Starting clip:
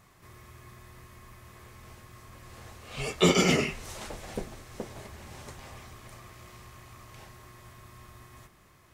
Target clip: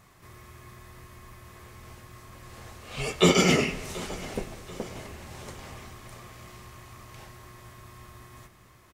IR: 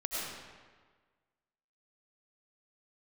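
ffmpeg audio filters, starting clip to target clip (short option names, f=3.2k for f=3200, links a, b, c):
-filter_complex "[0:a]aecho=1:1:733|1466|2199|2932:0.106|0.0508|0.0244|0.0117,asplit=2[a][b];[1:a]atrim=start_sample=2205[c];[b][c]afir=irnorm=-1:irlink=0,volume=-19dB[d];[a][d]amix=inputs=2:normalize=0,volume=1.5dB"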